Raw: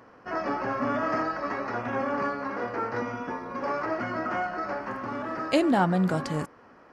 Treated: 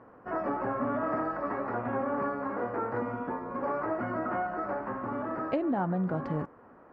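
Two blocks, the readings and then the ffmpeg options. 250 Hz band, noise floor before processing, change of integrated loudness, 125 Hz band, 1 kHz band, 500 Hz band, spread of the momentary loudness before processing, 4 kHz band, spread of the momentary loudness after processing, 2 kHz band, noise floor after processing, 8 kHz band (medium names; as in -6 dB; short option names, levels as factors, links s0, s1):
-3.5 dB, -54 dBFS, -3.5 dB, -4.0 dB, -3.5 dB, -2.5 dB, 10 LU, under -15 dB, 5 LU, -7.0 dB, -55 dBFS, no reading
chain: -af "lowpass=1300,acompressor=threshold=0.0501:ratio=6"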